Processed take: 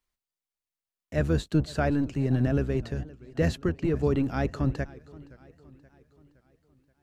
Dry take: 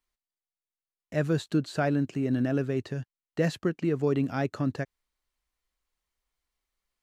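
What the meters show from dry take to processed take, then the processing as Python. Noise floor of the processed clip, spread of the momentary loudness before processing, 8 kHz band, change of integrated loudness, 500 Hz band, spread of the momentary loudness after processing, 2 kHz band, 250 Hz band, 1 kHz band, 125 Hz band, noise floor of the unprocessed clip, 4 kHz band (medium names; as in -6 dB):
under -85 dBFS, 11 LU, 0.0 dB, +1.0 dB, 0.0 dB, 10 LU, 0.0 dB, +0.5 dB, 0.0 dB, +3.5 dB, under -85 dBFS, 0.0 dB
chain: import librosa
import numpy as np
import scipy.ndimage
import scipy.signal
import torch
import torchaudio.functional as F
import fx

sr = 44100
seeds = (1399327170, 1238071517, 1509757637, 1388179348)

y = fx.octave_divider(x, sr, octaves=1, level_db=-1.0)
y = fx.echo_warbled(y, sr, ms=522, feedback_pct=50, rate_hz=2.8, cents=179, wet_db=-21.0)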